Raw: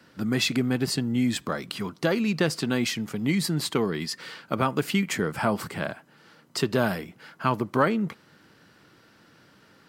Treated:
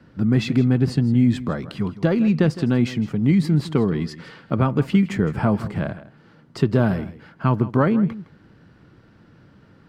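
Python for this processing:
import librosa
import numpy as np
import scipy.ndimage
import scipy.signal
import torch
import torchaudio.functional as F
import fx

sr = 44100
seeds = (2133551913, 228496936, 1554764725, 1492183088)

y = fx.riaa(x, sr, side='playback')
y = y + 10.0 ** (-16.0 / 20.0) * np.pad(y, (int(161 * sr / 1000.0), 0))[:len(y)]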